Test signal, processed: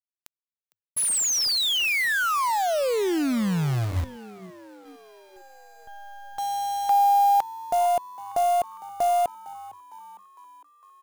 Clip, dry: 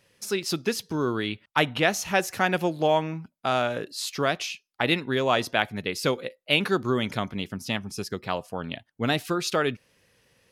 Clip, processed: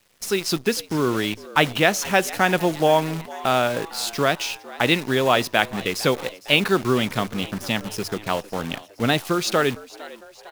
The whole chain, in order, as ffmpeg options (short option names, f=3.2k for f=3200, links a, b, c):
-filter_complex "[0:a]bandreject=f=50:t=h:w=6,bandreject=f=100:t=h:w=6,acrusher=bits=7:dc=4:mix=0:aa=0.000001,asplit=6[a][b][c][d][e][f];[b]adelay=456,afreqshift=96,volume=-19dB[g];[c]adelay=912,afreqshift=192,volume=-23.6dB[h];[d]adelay=1368,afreqshift=288,volume=-28.2dB[i];[e]adelay=1824,afreqshift=384,volume=-32.7dB[j];[f]adelay=2280,afreqshift=480,volume=-37.3dB[k];[a][g][h][i][j][k]amix=inputs=6:normalize=0,volume=4.5dB"